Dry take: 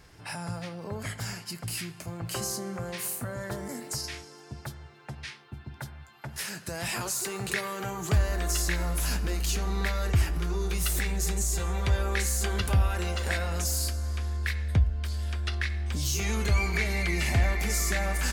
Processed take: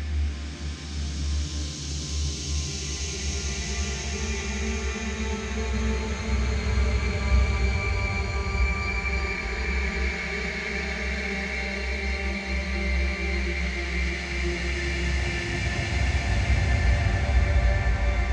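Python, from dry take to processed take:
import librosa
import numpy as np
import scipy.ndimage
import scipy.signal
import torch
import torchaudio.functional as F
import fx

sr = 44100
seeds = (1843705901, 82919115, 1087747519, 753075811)

y = scipy.signal.sosfilt(scipy.signal.butter(4, 6700.0, 'lowpass', fs=sr, output='sos'), x)
y = fx.paulstretch(y, sr, seeds[0], factor=11.0, window_s=0.5, from_s=15.84)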